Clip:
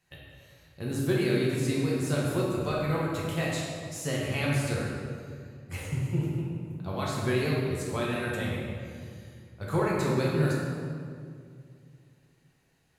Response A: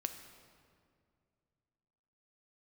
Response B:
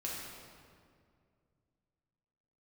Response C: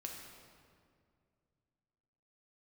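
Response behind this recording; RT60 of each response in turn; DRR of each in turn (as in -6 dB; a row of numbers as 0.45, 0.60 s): B; 2.2, 2.2, 2.2 s; 7.0, -5.5, 0.0 dB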